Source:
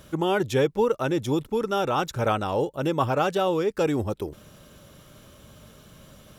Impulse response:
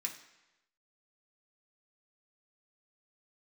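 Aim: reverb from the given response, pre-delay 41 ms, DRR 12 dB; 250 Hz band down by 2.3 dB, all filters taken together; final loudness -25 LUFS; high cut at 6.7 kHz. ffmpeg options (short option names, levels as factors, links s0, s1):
-filter_complex "[0:a]lowpass=6700,equalizer=f=250:t=o:g=-3.5,asplit=2[s0][s1];[1:a]atrim=start_sample=2205,adelay=41[s2];[s1][s2]afir=irnorm=-1:irlink=0,volume=0.251[s3];[s0][s3]amix=inputs=2:normalize=0,volume=1.12"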